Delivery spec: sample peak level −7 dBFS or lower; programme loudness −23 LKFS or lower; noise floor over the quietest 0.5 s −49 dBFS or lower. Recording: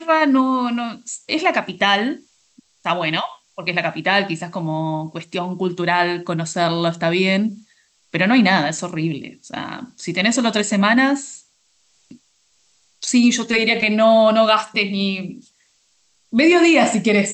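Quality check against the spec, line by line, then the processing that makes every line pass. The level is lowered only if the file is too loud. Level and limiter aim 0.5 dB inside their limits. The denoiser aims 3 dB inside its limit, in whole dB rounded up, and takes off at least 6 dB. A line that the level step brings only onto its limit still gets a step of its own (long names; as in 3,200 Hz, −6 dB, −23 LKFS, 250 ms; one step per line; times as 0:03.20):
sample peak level −5.0 dBFS: out of spec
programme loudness −18.0 LKFS: out of spec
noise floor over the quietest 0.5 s −61 dBFS: in spec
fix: level −5.5 dB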